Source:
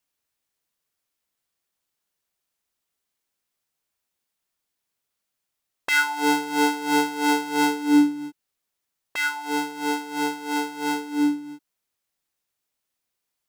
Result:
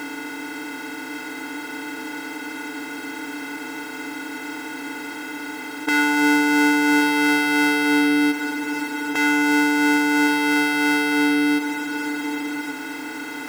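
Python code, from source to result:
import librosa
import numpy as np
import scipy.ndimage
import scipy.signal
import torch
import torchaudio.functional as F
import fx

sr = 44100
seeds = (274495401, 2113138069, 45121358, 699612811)

p1 = fx.bin_compress(x, sr, power=0.2)
p2 = np.clip(10.0 ** (18.5 / 20.0) * p1, -1.0, 1.0) / 10.0 ** (18.5 / 20.0)
p3 = p1 + (p2 * librosa.db_to_amplitude(-10.0))
p4 = p3 + 10.0 ** (-10.0 / 20.0) * np.pad(p3, (int(1129 * sr / 1000.0), 0))[:len(p3)]
y = p4 * librosa.db_to_amplitude(-4.5)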